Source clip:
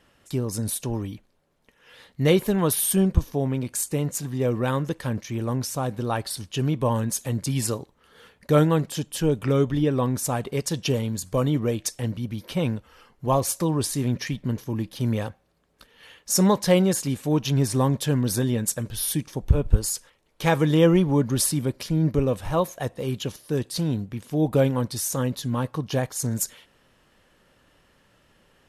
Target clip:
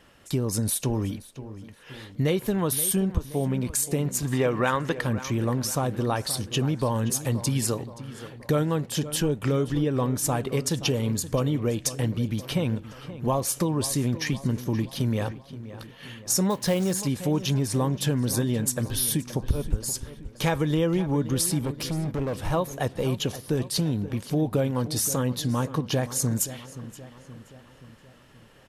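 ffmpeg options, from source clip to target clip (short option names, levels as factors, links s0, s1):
-filter_complex "[0:a]asplit=3[s0][s1][s2];[s0]afade=t=out:st=4.32:d=0.02[s3];[s1]equalizer=f=1600:w=0.36:g=14,afade=t=in:st=4.32:d=0.02,afade=t=out:st=5:d=0.02[s4];[s2]afade=t=in:st=5:d=0.02[s5];[s3][s4][s5]amix=inputs=3:normalize=0,acompressor=threshold=0.0447:ratio=4,asettb=1/sr,asplit=3[s6][s7][s8];[s6]atrim=end=16.504[s9];[s7]atrim=start=16.5:end=17.03,asetpts=PTS-STARTPTS,afade=t=in:d=0.004:c=qsin,afade=t=out:st=0.526:d=0.004:c=qsin,acrusher=bits=5:mode=log:mix=0:aa=0.000001[s10];[s8]atrim=start=17.026[s11];[s9][s10]acrossfade=d=0.004:c1=hsin:c2=qsin[s12];[s12][s11]acrossfade=d=0.004:c1=qsin:c2=hsin,asettb=1/sr,asplit=3[s13][s14][s15];[s13]atrim=end=21.644[s16];[s14]atrim=start=21.64:end=22.36,asetpts=PTS-STARTPTS,afade=t=in:d=0.004:c=qsin,afade=t=out:st=0.716:d=0.004:c=qsin,volume=29.9,asoftclip=hard,volume=0.0335[s17];[s15]atrim=start=22.356[s18];[s16][s17]acrossfade=d=0.004:c1=hsin:c2=qsin[s19];[s19][s18]acrossfade=d=0.004:c1=qsin:c2=hsin,asplit=2[s20][s21];[s21]adelay=525,lowpass=f=3500:p=1,volume=0.2,asplit=2[s22][s23];[s23]adelay=525,lowpass=f=3500:p=1,volume=0.54,asplit=2[s24][s25];[s25]adelay=525,lowpass=f=3500:p=1,volume=0.54,asplit=2[s26][s27];[s27]adelay=525,lowpass=f=3500:p=1,volume=0.54,asplit=2[s28][s29];[s29]adelay=525,lowpass=f=3500:p=1,volume=0.54[s30];[s20][s22][s24][s26][s28][s30]amix=inputs=6:normalize=0,volume=1.68"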